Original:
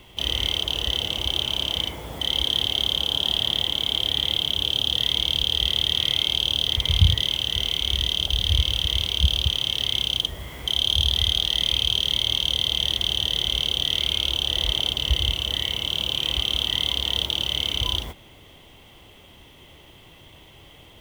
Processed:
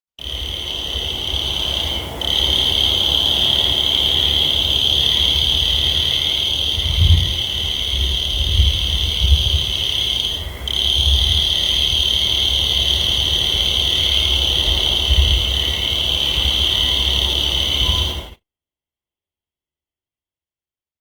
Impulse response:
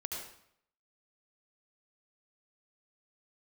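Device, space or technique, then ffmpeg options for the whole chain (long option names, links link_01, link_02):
speakerphone in a meeting room: -filter_complex "[1:a]atrim=start_sample=2205[link_01];[0:a][link_01]afir=irnorm=-1:irlink=0,dynaudnorm=framelen=620:gausssize=5:maxgain=9dB,agate=range=-52dB:threshold=-32dB:ratio=16:detection=peak" -ar 48000 -c:a libopus -b:a 32k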